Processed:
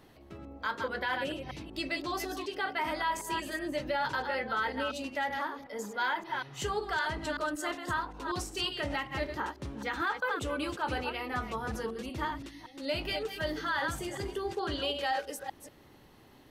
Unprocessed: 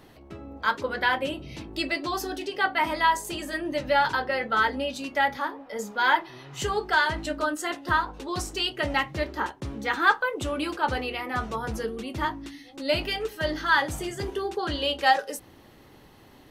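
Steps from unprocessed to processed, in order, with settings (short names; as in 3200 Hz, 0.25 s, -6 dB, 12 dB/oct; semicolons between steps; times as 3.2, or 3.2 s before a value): reverse delay 0.189 s, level -8.5 dB; limiter -17 dBFS, peak gain reduction 9.5 dB; gain -5.5 dB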